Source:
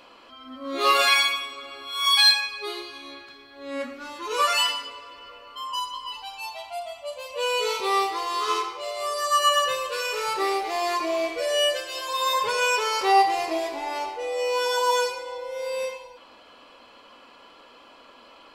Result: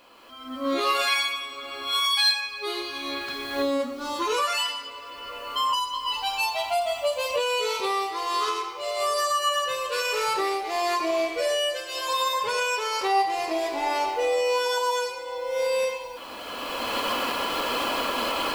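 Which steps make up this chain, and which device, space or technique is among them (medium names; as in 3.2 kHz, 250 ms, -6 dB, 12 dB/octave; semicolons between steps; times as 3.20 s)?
cheap recorder with automatic gain (white noise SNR 39 dB; recorder AGC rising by 18 dB/s); 3.62–4.22 s: high-order bell 2 kHz -9.5 dB 1.1 oct; trim -4.5 dB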